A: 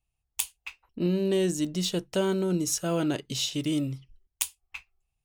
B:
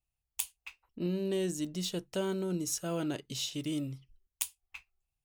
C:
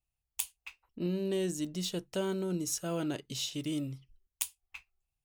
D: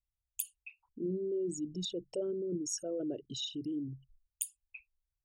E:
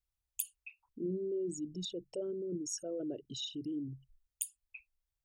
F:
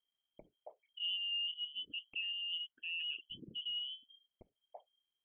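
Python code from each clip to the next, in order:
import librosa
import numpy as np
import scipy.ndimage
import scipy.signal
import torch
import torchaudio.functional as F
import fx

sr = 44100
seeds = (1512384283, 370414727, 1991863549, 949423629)

y1 = fx.high_shelf(x, sr, hz=11000.0, db=4.5)
y1 = y1 * 10.0 ** (-7.0 / 20.0)
y2 = y1
y3 = fx.envelope_sharpen(y2, sr, power=3.0)
y3 = y3 * 10.0 ** (-2.5 / 20.0)
y4 = fx.rider(y3, sr, range_db=3, speed_s=2.0)
y4 = y4 * 10.0 ** (-2.0 / 20.0)
y5 = fx.freq_invert(y4, sr, carrier_hz=3200)
y5 = y5 * 10.0 ** (-2.0 / 20.0)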